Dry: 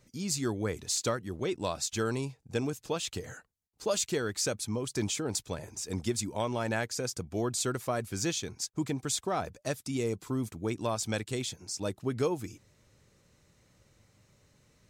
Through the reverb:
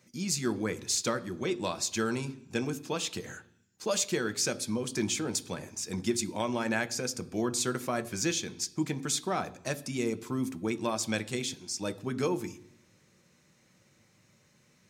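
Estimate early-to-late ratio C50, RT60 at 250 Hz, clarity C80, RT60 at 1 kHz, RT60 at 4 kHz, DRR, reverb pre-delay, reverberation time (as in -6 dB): 18.5 dB, 0.95 s, 21.0 dB, 0.70 s, 1.2 s, 11.0 dB, 3 ms, 0.70 s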